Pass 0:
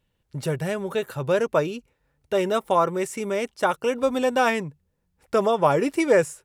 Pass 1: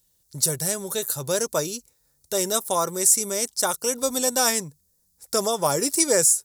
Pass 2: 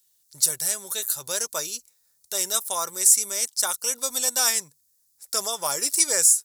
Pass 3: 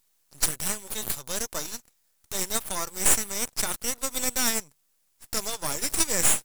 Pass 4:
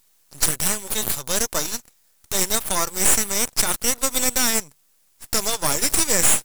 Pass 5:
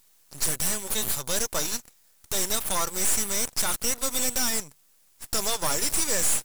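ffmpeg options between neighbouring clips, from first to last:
ffmpeg -i in.wav -af "aexciter=amount=13.6:drive=5.3:freq=4200,volume=-4dB" out.wav
ffmpeg -i in.wav -af "tiltshelf=frequency=680:gain=-9.5,volume=-8dB" out.wav
ffmpeg -i in.wav -af "aeval=exprs='max(val(0),0)':channel_layout=same" out.wav
ffmpeg -i in.wav -af "alimiter=level_in=9.5dB:limit=-1dB:release=50:level=0:latency=1,volume=-1dB" out.wav
ffmpeg -i in.wav -af "asoftclip=type=tanh:threshold=-15.5dB" out.wav

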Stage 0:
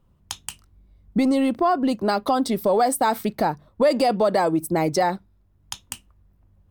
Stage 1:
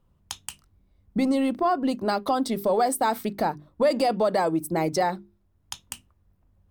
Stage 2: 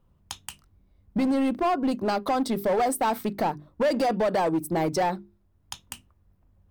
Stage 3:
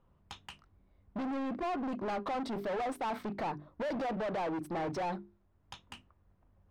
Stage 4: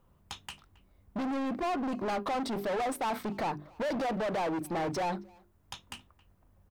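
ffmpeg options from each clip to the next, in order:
ffmpeg -i in.wav -af "bandreject=frequency=50:width_type=h:width=6,bandreject=frequency=100:width_type=h:width=6,bandreject=frequency=150:width_type=h:width=6,bandreject=frequency=200:width_type=h:width=6,bandreject=frequency=250:width_type=h:width=6,bandreject=frequency=300:width_type=h:width=6,bandreject=frequency=350:width_type=h:width=6,bandreject=frequency=400:width_type=h:width=6,volume=-3dB" out.wav
ffmpeg -i in.wav -filter_complex "[0:a]equalizer=frequency=8100:width=0.37:gain=-3.5,asplit=2[link_01][link_02];[link_02]aeval=exprs='0.0708*(abs(mod(val(0)/0.0708+3,4)-2)-1)':channel_layout=same,volume=-5dB[link_03];[link_01][link_03]amix=inputs=2:normalize=0,volume=-2.5dB" out.wav
ffmpeg -i in.wav -filter_complex "[0:a]asoftclip=type=hard:threshold=-30.5dB,aemphasis=mode=reproduction:type=50kf,asplit=2[link_01][link_02];[link_02]highpass=frequency=720:poles=1,volume=7dB,asoftclip=type=tanh:threshold=-30.5dB[link_03];[link_01][link_03]amix=inputs=2:normalize=0,lowpass=frequency=2200:poles=1,volume=-6dB" out.wav
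ffmpeg -i in.wav -filter_complex "[0:a]crystalizer=i=1.5:c=0,asplit=2[link_01][link_02];[link_02]adelay=270,highpass=300,lowpass=3400,asoftclip=type=hard:threshold=-39dB,volume=-21dB[link_03];[link_01][link_03]amix=inputs=2:normalize=0,volume=3dB" out.wav

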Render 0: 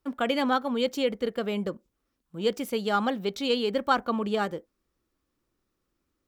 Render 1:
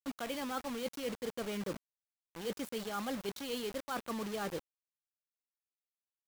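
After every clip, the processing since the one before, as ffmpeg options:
ffmpeg -i in.wav -af "areverse,acompressor=threshold=-33dB:ratio=16,areverse,acrusher=bits=6:mix=0:aa=0.000001,volume=-2dB" out.wav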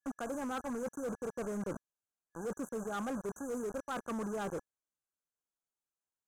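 ffmpeg -i in.wav -af "afftfilt=real='re*(1-between(b*sr/4096,1700,5900))':imag='im*(1-between(b*sr/4096,1700,5900))':win_size=4096:overlap=0.75,lowpass=8700,asoftclip=type=hard:threshold=-36dB,volume=2.5dB" out.wav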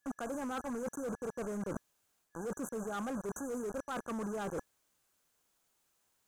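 ffmpeg -i in.wav -af "alimiter=level_in=18.5dB:limit=-24dB:level=0:latency=1:release=12,volume=-18.5dB,areverse,acompressor=threshold=-55dB:ratio=6,areverse,volume=18dB" out.wav

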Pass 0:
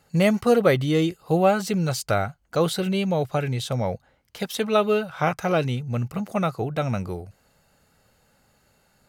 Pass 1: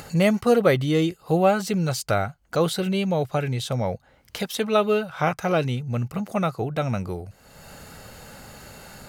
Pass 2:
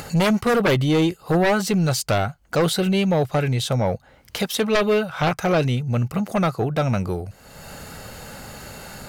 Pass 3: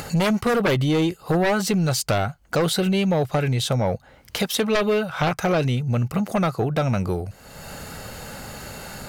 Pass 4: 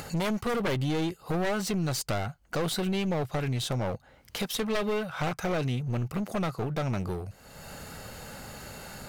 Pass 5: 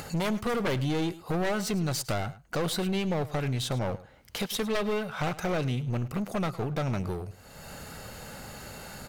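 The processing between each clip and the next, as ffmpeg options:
ffmpeg -i in.wav -af "acompressor=mode=upward:threshold=-26dB:ratio=2.5" out.wav
ffmpeg -i in.wav -af "aeval=exprs='0.531*sin(PI/2*3.16*val(0)/0.531)':channel_layout=same,volume=-8.5dB" out.wav
ffmpeg -i in.wav -af "acompressor=threshold=-19dB:ratio=6,volume=1.5dB" out.wav
ffmpeg -i in.wav -af "aeval=exprs='clip(val(0),-1,0.0668)':channel_layout=same,volume=-6.5dB" out.wav
ffmpeg -i in.wav -af "aecho=1:1:105:0.133" out.wav

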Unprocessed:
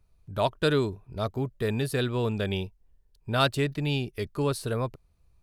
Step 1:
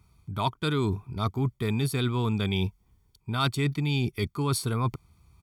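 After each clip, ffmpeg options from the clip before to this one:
ffmpeg -i in.wav -af "highpass=84,aecho=1:1:0.9:0.75,areverse,acompressor=threshold=-33dB:ratio=5,areverse,volume=8.5dB" out.wav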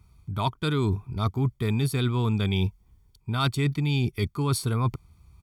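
ffmpeg -i in.wav -af "lowshelf=frequency=88:gain=8.5" out.wav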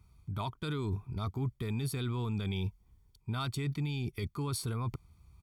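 ffmpeg -i in.wav -af "alimiter=limit=-21.5dB:level=0:latency=1:release=20,volume=-5dB" out.wav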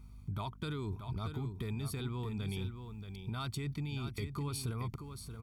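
ffmpeg -i in.wav -af "acompressor=threshold=-40dB:ratio=4,aeval=exprs='val(0)+0.00158*(sin(2*PI*50*n/s)+sin(2*PI*2*50*n/s)/2+sin(2*PI*3*50*n/s)/3+sin(2*PI*4*50*n/s)/4+sin(2*PI*5*50*n/s)/5)':channel_layout=same,aecho=1:1:629:0.376,volume=3.5dB" out.wav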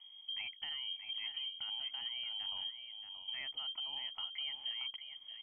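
ffmpeg -i in.wav -af "lowpass=frequency=2800:width_type=q:width=0.5098,lowpass=frequency=2800:width_type=q:width=0.6013,lowpass=frequency=2800:width_type=q:width=0.9,lowpass=frequency=2800:width_type=q:width=2.563,afreqshift=-3300,volume=-4dB" out.wav

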